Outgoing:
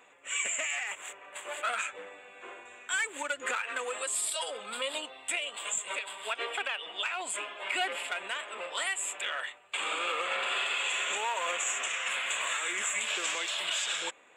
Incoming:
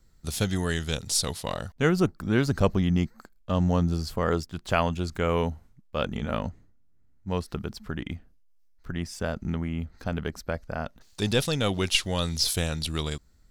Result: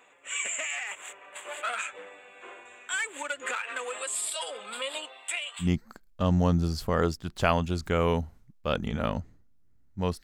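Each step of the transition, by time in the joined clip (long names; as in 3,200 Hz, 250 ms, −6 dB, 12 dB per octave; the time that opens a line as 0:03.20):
outgoing
0:04.89–0:05.69: high-pass filter 230 Hz → 1,500 Hz
0:05.64: continue with incoming from 0:02.93, crossfade 0.10 s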